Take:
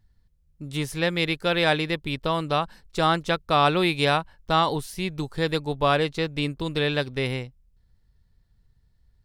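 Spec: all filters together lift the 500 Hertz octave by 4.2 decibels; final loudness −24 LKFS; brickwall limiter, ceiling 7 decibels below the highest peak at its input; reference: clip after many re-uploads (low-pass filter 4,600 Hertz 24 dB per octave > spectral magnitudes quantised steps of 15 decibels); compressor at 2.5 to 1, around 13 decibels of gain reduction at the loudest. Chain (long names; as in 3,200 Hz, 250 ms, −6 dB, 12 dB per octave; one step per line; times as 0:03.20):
parametric band 500 Hz +5 dB
downward compressor 2.5 to 1, threshold −34 dBFS
brickwall limiter −24 dBFS
low-pass filter 4,600 Hz 24 dB per octave
spectral magnitudes quantised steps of 15 dB
level +13 dB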